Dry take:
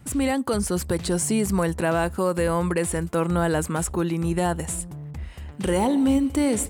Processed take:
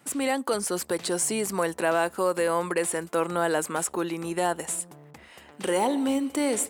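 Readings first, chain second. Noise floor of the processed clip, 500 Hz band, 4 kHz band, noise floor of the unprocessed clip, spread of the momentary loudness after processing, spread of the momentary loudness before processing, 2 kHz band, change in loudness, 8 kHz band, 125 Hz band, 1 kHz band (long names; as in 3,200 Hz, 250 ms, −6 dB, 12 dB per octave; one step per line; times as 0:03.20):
−52 dBFS, −1.0 dB, 0.0 dB, −39 dBFS, 5 LU, 9 LU, 0.0 dB, −3.0 dB, 0.0 dB, −14.0 dB, 0.0 dB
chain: high-pass filter 360 Hz 12 dB per octave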